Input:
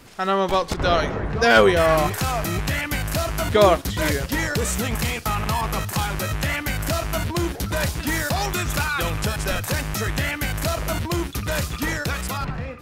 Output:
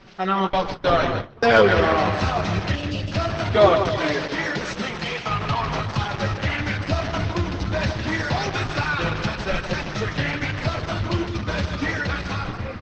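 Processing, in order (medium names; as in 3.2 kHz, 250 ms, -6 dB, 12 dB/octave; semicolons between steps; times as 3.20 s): Savitzky-Golay filter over 15 samples; 2.74–3.12 s: spectral selection erased 640–2500 Hz; flange 0.21 Hz, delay 5.1 ms, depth 6.1 ms, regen -12%; feedback delay 154 ms, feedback 53%, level -8 dB; saturation -8 dBFS, distortion -24 dB; 0.47–1.77 s: gate with hold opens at -16 dBFS; flange 1.5 Hz, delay 8.8 ms, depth 2.9 ms, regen -50%; 3.97–5.30 s: high-pass 270 Hz 6 dB/octave; trim +8 dB; Opus 12 kbps 48 kHz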